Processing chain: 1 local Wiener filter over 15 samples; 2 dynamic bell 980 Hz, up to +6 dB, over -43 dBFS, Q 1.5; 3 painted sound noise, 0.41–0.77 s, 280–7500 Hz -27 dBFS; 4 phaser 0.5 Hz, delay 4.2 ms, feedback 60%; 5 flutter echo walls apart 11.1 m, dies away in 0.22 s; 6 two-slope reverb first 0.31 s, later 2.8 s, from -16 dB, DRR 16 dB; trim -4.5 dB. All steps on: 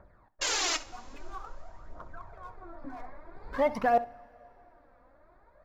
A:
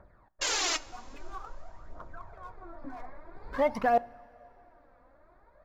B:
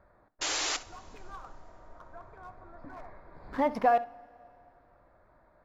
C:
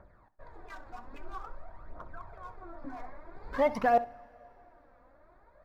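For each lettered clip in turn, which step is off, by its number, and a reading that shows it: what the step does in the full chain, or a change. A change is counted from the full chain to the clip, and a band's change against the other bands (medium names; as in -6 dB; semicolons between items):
5, echo-to-direct -14.0 dB to -16.0 dB; 4, 250 Hz band +3.0 dB; 3, 4 kHz band -21.0 dB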